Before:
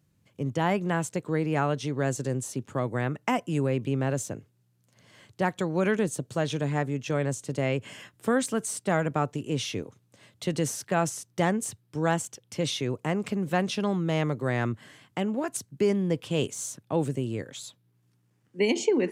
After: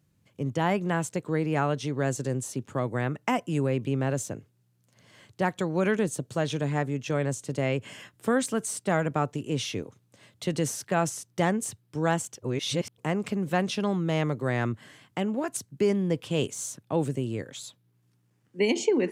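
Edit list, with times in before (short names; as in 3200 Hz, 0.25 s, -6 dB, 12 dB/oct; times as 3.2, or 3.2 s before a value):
12.42–12.98 reverse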